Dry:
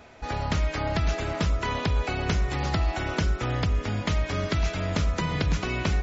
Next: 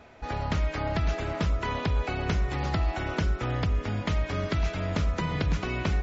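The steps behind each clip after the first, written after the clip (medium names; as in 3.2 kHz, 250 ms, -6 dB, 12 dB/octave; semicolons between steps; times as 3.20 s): treble shelf 4.9 kHz -8.5 dB; trim -1.5 dB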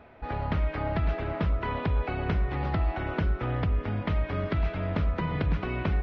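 Gaussian low-pass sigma 2.6 samples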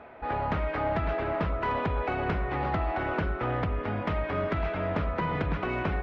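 overdrive pedal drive 15 dB, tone 1.2 kHz, clips at -16.5 dBFS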